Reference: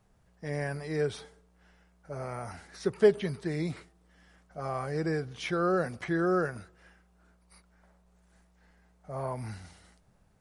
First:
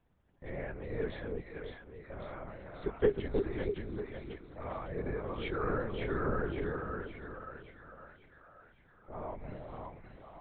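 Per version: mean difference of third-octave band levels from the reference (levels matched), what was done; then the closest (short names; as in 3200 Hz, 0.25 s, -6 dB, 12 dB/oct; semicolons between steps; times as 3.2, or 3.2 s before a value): 9.0 dB: on a send: split-band echo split 620 Hz, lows 0.315 s, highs 0.553 s, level -3 dB; on the sum: LPC vocoder at 8 kHz whisper; gain -6.5 dB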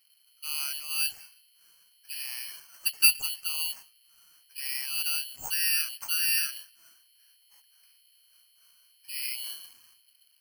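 22.0 dB: inverted band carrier 3100 Hz; careless resampling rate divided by 6×, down none, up zero stuff; gain -7.5 dB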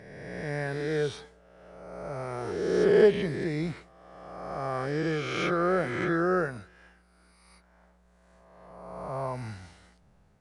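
4.5 dB: spectral swells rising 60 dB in 1.68 s; high shelf 7700 Hz -11 dB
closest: third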